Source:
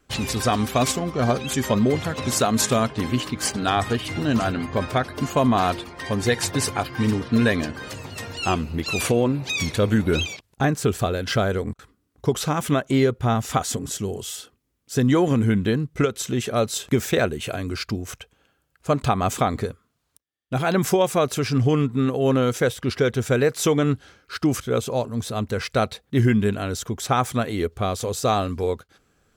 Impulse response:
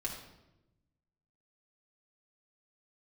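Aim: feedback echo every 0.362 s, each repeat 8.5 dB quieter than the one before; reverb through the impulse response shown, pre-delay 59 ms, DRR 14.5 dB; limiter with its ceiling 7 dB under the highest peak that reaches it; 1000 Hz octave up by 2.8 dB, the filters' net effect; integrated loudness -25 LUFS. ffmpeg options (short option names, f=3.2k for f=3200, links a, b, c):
-filter_complex "[0:a]equalizer=f=1k:t=o:g=4,alimiter=limit=-11.5dB:level=0:latency=1,aecho=1:1:362|724|1086|1448:0.376|0.143|0.0543|0.0206,asplit=2[a][b];[1:a]atrim=start_sample=2205,adelay=59[c];[b][c]afir=irnorm=-1:irlink=0,volume=-15.5dB[d];[a][d]amix=inputs=2:normalize=0,volume=-2dB"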